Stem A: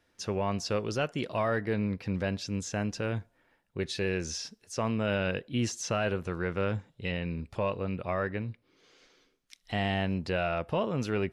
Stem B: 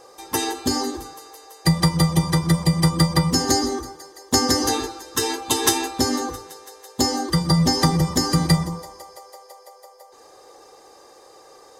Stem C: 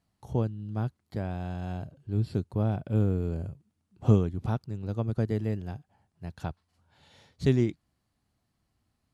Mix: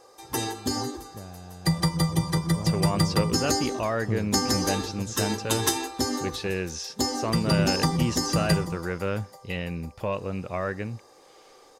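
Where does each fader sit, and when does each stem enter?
+1.5 dB, -6.0 dB, -9.0 dB; 2.45 s, 0.00 s, 0.00 s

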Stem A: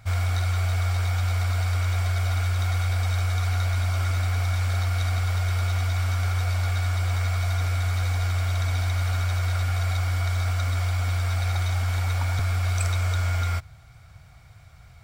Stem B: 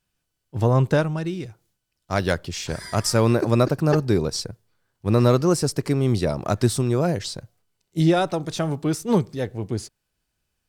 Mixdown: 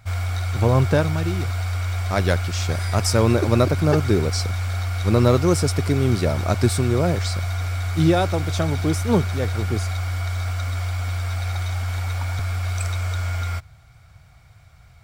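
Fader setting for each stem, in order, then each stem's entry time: -0.5 dB, +0.5 dB; 0.00 s, 0.00 s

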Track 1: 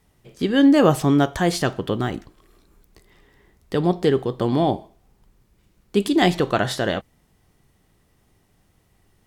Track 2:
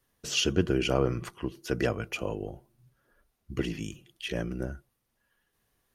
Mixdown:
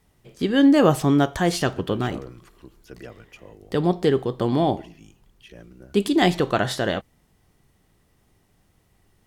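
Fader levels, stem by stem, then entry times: -1.0 dB, -12.5 dB; 0.00 s, 1.20 s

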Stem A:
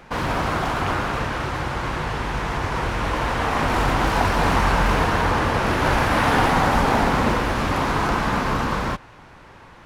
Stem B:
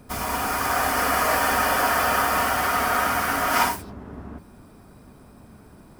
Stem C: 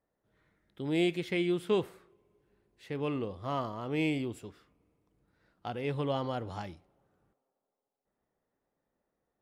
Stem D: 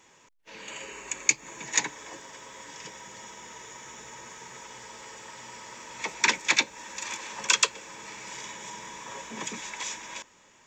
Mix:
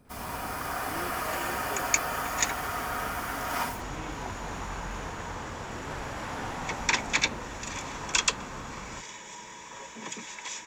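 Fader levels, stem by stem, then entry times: -18.0 dB, -11.0 dB, -14.5 dB, -3.0 dB; 0.05 s, 0.00 s, 0.00 s, 0.65 s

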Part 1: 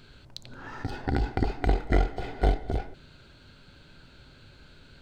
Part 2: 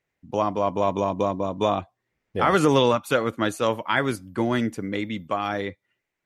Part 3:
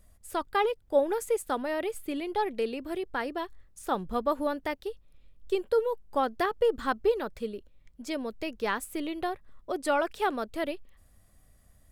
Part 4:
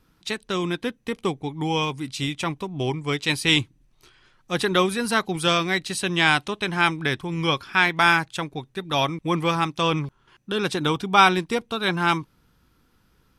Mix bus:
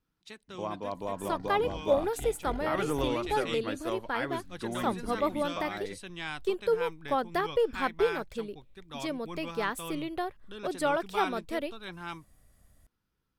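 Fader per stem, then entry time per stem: -16.0 dB, -12.5 dB, -1.5 dB, -19.0 dB; 0.55 s, 0.25 s, 0.95 s, 0.00 s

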